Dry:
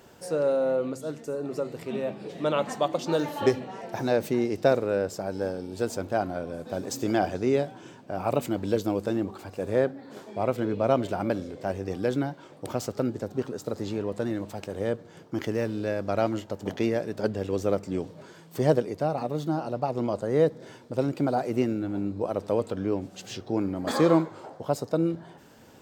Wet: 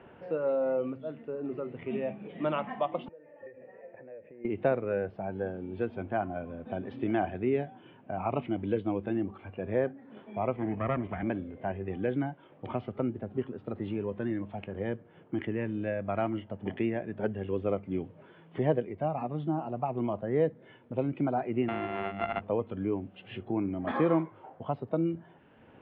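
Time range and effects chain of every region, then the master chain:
0:03.08–0:04.45: downward compressor, threshold −31 dBFS + formant resonators in series e
0:10.56–0:11.23: lower of the sound and its delayed copy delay 0.45 ms + high-pass filter 53 Hz + high-shelf EQ 3,500 Hz −11.5 dB
0:21.68–0:22.41: samples sorted by size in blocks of 64 samples + mains-hum notches 50/100/150/200/250/300/350/400/450 Hz
whole clip: Butterworth low-pass 3,000 Hz 48 dB per octave; noise reduction from a noise print of the clip's start 8 dB; multiband upward and downward compressor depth 40%; level −3 dB

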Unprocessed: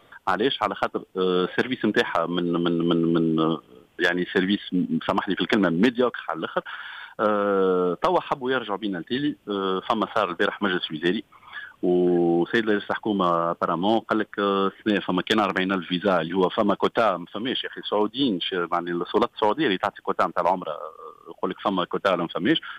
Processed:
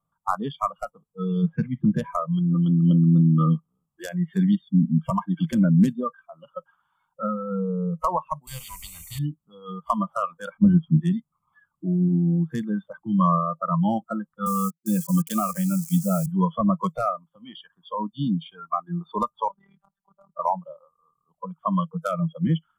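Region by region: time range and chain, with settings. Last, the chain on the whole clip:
0:01.42–0:02.06: bass and treble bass +3 dB, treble −9 dB + one half of a high-frequency compander decoder only
0:08.47–0:09.19: low-shelf EQ 320 Hz −6.5 dB + every bin compressed towards the loudest bin 4 to 1
0:10.57–0:11.01: low-pass filter 1,200 Hz 6 dB per octave + low-shelf EQ 330 Hz +10.5 dB
0:14.46–0:16.26: elliptic high-pass filter 150 Hz, stop band 80 dB + bit-depth reduction 6 bits, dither none
0:19.48–0:20.39: downward compressor 2 to 1, threshold −27 dBFS + amplitude modulation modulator 38 Hz, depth 95% + phases set to zero 197 Hz
whole clip: noise reduction from a noise print of the clip's start 26 dB; drawn EQ curve 110 Hz 0 dB, 160 Hz +9 dB, 350 Hz −19 dB, 1,200 Hz −2 dB, 1,700 Hz −25 dB, 3,800 Hz −20 dB, 7,500 Hz +1 dB; level +5.5 dB

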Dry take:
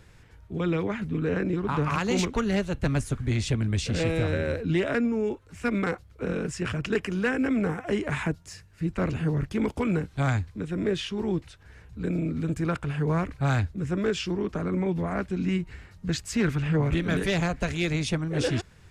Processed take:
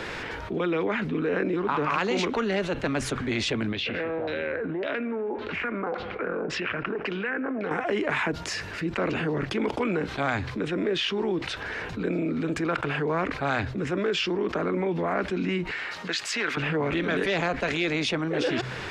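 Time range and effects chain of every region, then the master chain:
0:03.72–0:07.71: auto-filter low-pass saw down 1.8 Hz 720–4,500 Hz + downward compressor, threshold −38 dBFS + delay with a low-pass on its return 81 ms, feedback 69%, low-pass 2,400 Hz, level −21 dB
0:15.71–0:16.57: high-pass filter 1,300 Hz 6 dB per octave + high-shelf EQ 8,800 Hz −5.5 dB
whole clip: three-way crossover with the lows and the highs turned down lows −20 dB, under 250 Hz, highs −18 dB, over 4,800 Hz; hum removal 64.04 Hz, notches 2; envelope flattener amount 70%

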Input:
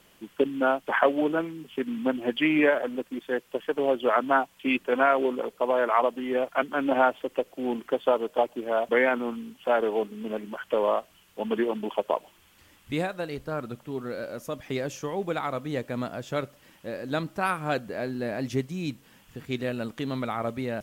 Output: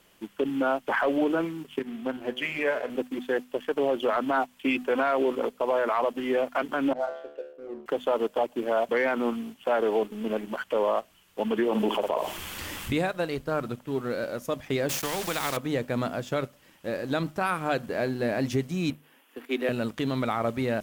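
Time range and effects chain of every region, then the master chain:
0:01.79–0:02.90: notch filter 310 Hz, Q 5.5 + tuned comb filter 63 Hz, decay 1.1 s
0:06.93–0:07.86: spectral envelope exaggerated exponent 2 + tuned comb filter 73 Hz, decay 0.98 s, mix 90%
0:11.68–0:12.93: flutter between parallel walls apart 9.5 metres, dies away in 0.24 s + envelope flattener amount 50%
0:14.89–0:15.57: centre clipping without the shift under −42 dBFS + every bin compressed towards the loudest bin 2 to 1
0:18.90–0:19.69: Butterworth high-pass 240 Hz 72 dB per octave + flat-topped bell 5,700 Hz −8.5 dB 1.3 octaves
whole clip: mains-hum notches 50/100/150/200/250 Hz; leveller curve on the samples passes 1; brickwall limiter −17 dBFS

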